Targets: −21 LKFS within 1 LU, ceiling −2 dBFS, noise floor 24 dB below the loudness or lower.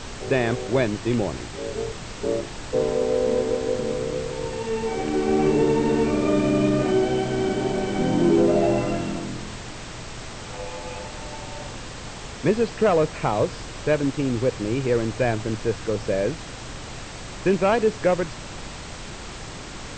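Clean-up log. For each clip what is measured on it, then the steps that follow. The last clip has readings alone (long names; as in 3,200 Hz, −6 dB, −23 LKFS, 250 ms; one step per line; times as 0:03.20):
background noise floor −37 dBFS; target noise floor −48 dBFS; integrated loudness −23.5 LKFS; sample peak −9.0 dBFS; target loudness −21.0 LKFS
→ noise reduction from a noise print 11 dB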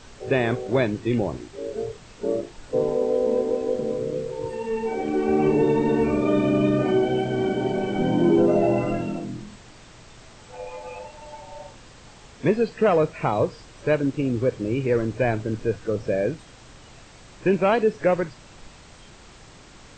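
background noise floor −48 dBFS; integrated loudness −23.5 LKFS; sample peak −9.5 dBFS; target loudness −21.0 LKFS
→ level +2.5 dB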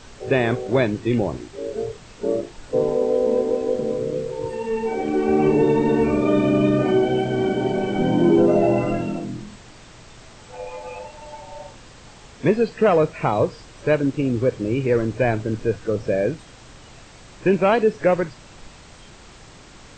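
integrated loudness −21.0 LKFS; sample peak −7.0 dBFS; background noise floor −45 dBFS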